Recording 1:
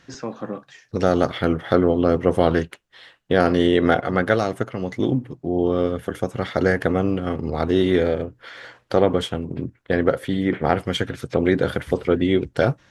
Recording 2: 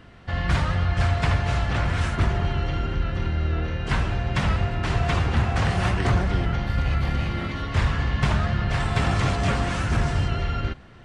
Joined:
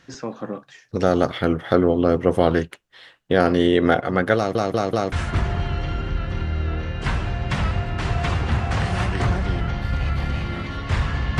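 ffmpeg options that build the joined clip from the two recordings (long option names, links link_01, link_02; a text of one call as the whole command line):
ffmpeg -i cue0.wav -i cue1.wav -filter_complex "[0:a]apad=whole_dur=11.39,atrim=end=11.39,asplit=4[link_01][link_02][link_03][link_04];[link_01]atrim=end=4.552[link_05];[link_02]atrim=start=4.358:end=4.552[link_06];[link_03]atrim=start=4.358:end=4.552[link_07];[link_04]atrim=start=4.358:end=4.552[link_08];[1:a]atrim=start=1.968:end=8.24[link_09];[link_05][link_06]acrossfade=duration=0.004:curve1=hsin:curve2=hsin[link_10];[link_10][link_07]acrossfade=duration=0.004:curve1=hsin:curve2=hsin[link_11];[link_11][link_08]acrossfade=duration=0.004:curve1=hsin:curve2=hsin[link_12];[link_12][link_09]acrossfade=duration=0.004:curve1=hsin:curve2=hsin" out.wav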